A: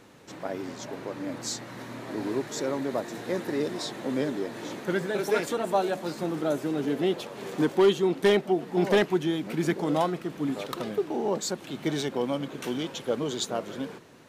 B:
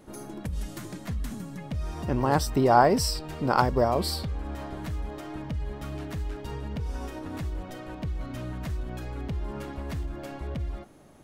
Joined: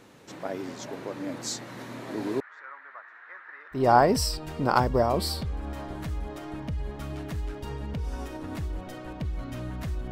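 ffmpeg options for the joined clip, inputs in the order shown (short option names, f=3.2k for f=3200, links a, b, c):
-filter_complex "[0:a]asettb=1/sr,asplit=3[a][b][c];[a]atrim=end=2.404[d];[b]atrim=start=2.4:end=3.87,asetpts=PTS-STARTPTS,afade=t=in:d=0.004:c=qsin,afade=t=out:st=1.466:d=0.004:c=qsin,asuperpass=centerf=1500:order=4:qfactor=2[e];[c]atrim=start=3.866[f];[d][e]acrossfade=d=0.004:c1=hsin:c2=qsin[g];[g][f]acrossfade=d=0.004:c1=qsin:c2=hsin,apad=whole_dur=10.11,atrim=end=10.11,atrim=end=3.87,asetpts=PTS-STARTPTS[h];[1:a]atrim=start=2.53:end=8.93,asetpts=PTS-STARTPTS[i];[h][i]acrossfade=d=0.16:c1=tri:c2=tri"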